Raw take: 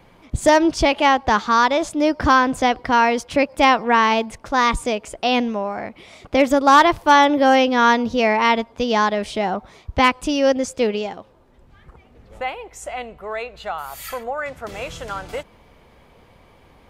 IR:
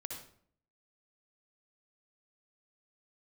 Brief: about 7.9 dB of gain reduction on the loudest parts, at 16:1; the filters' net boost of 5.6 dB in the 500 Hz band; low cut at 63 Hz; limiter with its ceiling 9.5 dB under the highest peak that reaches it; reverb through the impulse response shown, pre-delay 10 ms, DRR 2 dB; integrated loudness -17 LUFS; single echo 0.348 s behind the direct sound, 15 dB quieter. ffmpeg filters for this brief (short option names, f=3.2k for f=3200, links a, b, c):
-filter_complex "[0:a]highpass=63,equalizer=f=500:t=o:g=6.5,acompressor=threshold=-13dB:ratio=16,alimiter=limit=-15dB:level=0:latency=1,aecho=1:1:348:0.178,asplit=2[a][b];[1:a]atrim=start_sample=2205,adelay=10[c];[b][c]afir=irnorm=-1:irlink=0,volume=-0.5dB[d];[a][d]amix=inputs=2:normalize=0,volume=5.5dB"